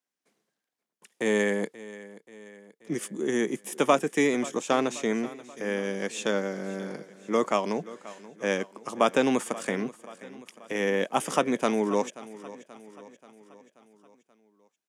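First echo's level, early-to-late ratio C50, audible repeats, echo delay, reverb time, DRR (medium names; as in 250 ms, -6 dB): -18.0 dB, no reverb, 4, 532 ms, no reverb, no reverb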